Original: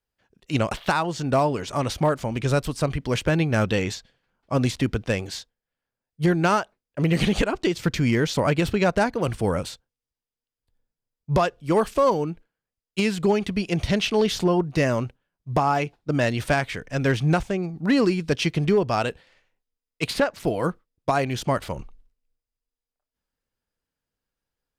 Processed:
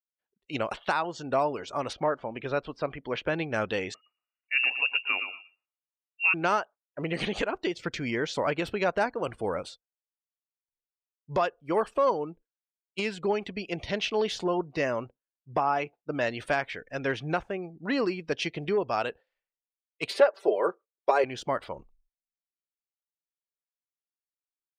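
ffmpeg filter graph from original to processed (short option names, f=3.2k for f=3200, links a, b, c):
-filter_complex "[0:a]asettb=1/sr,asplit=3[a][b][c];[a]atrim=end=1.934[d];[b]atrim=start=1.93:end=3.25,asetpts=PTS-STARTPTS,afade=t=in:d=0.004:c=qsin,afade=t=out:st=1.316:d=0.004:c=qsin,lowpass=4.1k,equalizer=f=74:t=o:w=1.3:g=-5.5[e];[c]atrim=start=3.246[f];[d][e]acrossfade=d=0.004:c1=hsin:c2=qsin[g];[g][f]acrossfade=d=0.004:c1=qsin:c2=hsin,asettb=1/sr,asplit=3[h][i][j];[h]atrim=end=3.944[k];[i]atrim=start=3.94:end=6.34,asetpts=PTS-STARTPTS,afade=t=in:d=0.004:c=qsin,afade=t=out:st=2.396:d=0.004:c=qsin,aecho=1:1:118|236|354:0.398|0.104|0.0269,atrim=end_sample=105840,lowpass=f=2.5k:t=q:w=0.5098,lowpass=f=2.5k:t=q:w=0.6013,lowpass=f=2.5k:t=q:w=0.9,lowpass=f=2.5k:t=q:w=2.563,afreqshift=-2900[l];[j]atrim=start=6.336[m];[k][l]acrossfade=d=0.004:c1=hsin:c2=qsin[n];[n][m]acrossfade=d=0.004:c1=qsin:c2=hsin,asettb=1/sr,asplit=3[o][p][q];[o]atrim=end=20.094[r];[p]atrim=start=20.09:end=21.24,asetpts=PTS-STARTPTS,afade=t=in:d=0.004:c=qsin,afade=t=out:st=1.146:d=0.004:c=qsin,highpass=f=420:t=q:w=2.4,aecho=1:1:5.1:0.51,atrim=end_sample=50715[s];[q]atrim=start=21.236[t];[r][s]acrossfade=d=0.004:c1=hsin:c2=qsin[u];[u][t]acrossfade=d=0.004:c1=qsin:c2=hsin,afftdn=nr=20:nf=-42,bass=f=250:g=-13,treble=f=4k:g=-4,volume=-4dB"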